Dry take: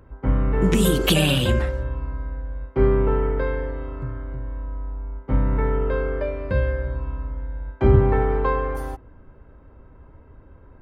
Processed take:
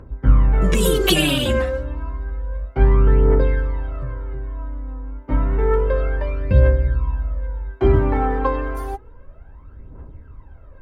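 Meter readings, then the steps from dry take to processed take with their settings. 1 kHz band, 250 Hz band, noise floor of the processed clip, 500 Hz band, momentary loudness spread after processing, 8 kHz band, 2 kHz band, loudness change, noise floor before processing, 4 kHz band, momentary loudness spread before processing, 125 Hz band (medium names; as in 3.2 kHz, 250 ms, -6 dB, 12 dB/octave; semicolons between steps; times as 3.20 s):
+2.0 dB, +0.5 dB, -43 dBFS, +1.5 dB, 15 LU, no reading, +2.0 dB, +3.0 dB, -49 dBFS, +3.0 dB, 15 LU, +3.0 dB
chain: phaser 0.3 Hz, delay 4 ms, feedback 66%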